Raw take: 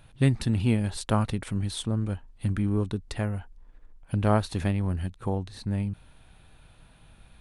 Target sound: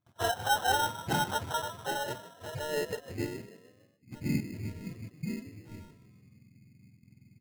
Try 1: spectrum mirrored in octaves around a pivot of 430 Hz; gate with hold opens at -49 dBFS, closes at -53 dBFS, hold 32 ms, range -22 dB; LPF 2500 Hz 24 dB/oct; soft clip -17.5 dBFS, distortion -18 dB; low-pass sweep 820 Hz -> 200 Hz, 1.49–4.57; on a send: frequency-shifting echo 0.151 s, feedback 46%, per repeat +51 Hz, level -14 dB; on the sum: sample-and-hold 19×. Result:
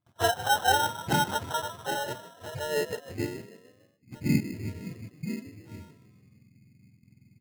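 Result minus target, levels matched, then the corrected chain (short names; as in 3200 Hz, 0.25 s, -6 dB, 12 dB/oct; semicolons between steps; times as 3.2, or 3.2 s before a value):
soft clip: distortion -9 dB
spectrum mirrored in octaves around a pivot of 430 Hz; gate with hold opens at -49 dBFS, closes at -53 dBFS, hold 32 ms, range -22 dB; LPF 2500 Hz 24 dB/oct; soft clip -27 dBFS, distortion -9 dB; low-pass sweep 820 Hz -> 200 Hz, 1.49–4.57; on a send: frequency-shifting echo 0.151 s, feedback 46%, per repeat +51 Hz, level -14 dB; on the sum: sample-and-hold 19×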